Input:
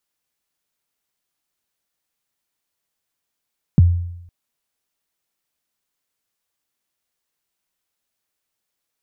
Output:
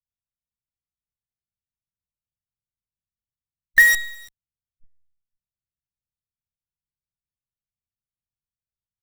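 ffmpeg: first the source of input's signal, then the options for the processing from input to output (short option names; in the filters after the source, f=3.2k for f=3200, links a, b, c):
-f lavfi -i "aevalsrc='0.562*pow(10,-3*t/0.82)*sin(2*PI*(210*0.022/log(87/210)*(exp(log(87/210)*min(t,0.022)/0.022)-1)+87*max(t-0.022,0)))':d=0.51:s=44100"
-filter_complex "[0:a]afftfilt=real='real(if(between(b,1,1012),(2*floor((b-1)/92)+1)*92-b,b),0)':imag='imag(if(between(b,1,1012),(2*floor((b-1)/92)+1)*92-b,b),0)*if(between(b,1,1012),-1,1)':win_size=2048:overlap=0.75,acrossover=split=160[a][b];[a]aecho=1:1:1056:0.631[c];[b]acrusher=bits=4:dc=4:mix=0:aa=0.000001[d];[c][d]amix=inputs=2:normalize=0"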